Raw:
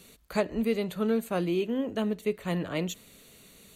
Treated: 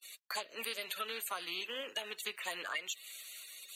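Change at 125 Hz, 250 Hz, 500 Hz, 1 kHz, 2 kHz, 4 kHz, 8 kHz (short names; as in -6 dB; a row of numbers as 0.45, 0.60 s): -34.5, -28.5, -17.0, -4.5, 0.0, +4.0, +2.5 dB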